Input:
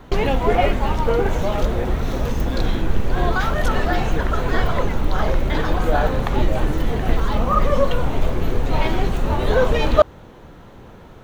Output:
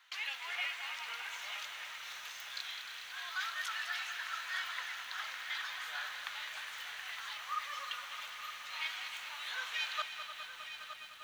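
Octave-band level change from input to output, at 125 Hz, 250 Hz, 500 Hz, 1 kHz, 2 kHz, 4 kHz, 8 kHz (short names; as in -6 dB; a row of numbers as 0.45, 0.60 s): under -40 dB, under -40 dB, -40.0 dB, -20.5 dB, -9.5 dB, -6.0 dB, n/a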